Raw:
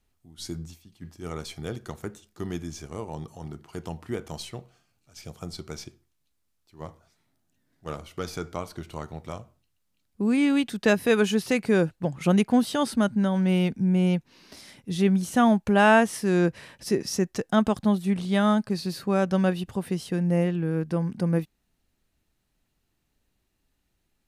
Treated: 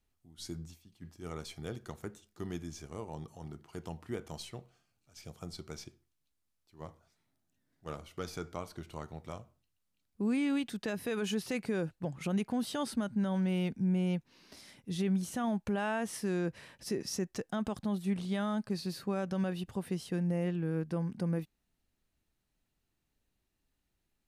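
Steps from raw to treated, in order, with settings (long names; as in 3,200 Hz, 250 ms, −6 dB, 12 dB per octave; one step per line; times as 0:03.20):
brickwall limiter −17 dBFS, peak gain reduction 10.5 dB
level −7 dB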